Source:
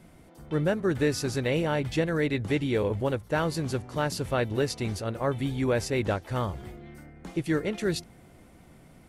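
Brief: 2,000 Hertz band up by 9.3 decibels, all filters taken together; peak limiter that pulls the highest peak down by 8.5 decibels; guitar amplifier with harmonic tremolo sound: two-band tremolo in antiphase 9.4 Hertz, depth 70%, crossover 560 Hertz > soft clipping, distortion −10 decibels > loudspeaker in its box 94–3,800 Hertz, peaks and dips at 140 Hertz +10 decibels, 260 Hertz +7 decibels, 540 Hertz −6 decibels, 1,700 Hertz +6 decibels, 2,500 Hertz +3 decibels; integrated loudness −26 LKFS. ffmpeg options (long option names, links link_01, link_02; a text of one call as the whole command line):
ffmpeg -i in.wav -filter_complex "[0:a]equalizer=frequency=2000:width_type=o:gain=6.5,alimiter=limit=-20dB:level=0:latency=1,acrossover=split=560[link_01][link_02];[link_01]aeval=exprs='val(0)*(1-0.7/2+0.7/2*cos(2*PI*9.4*n/s))':channel_layout=same[link_03];[link_02]aeval=exprs='val(0)*(1-0.7/2-0.7/2*cos(2*PI*9.4*n/s))':channel_layout=same[link_04];[link_03][link_04]amix=inputs=2:normalize=0,asoftclip=threshold=-32dB,highpass=94,equalizer=frequency=140:width_type=q:width=4:gain=10,equalizer=frequency=260:width_type=q:width=4:gain=7,equalizer=frequency=540:width_type=q:width=4:gain=-6,equalizer=frequency=1700:width_type=q:width=4:gain=6,equalizer=frequency=2500:width_type=q:width=4:gain=3,lowpass=frequency=3800:width=0.5412,lowpass=frequency=3800:width=1.3066,volume=9.5dB" out.wav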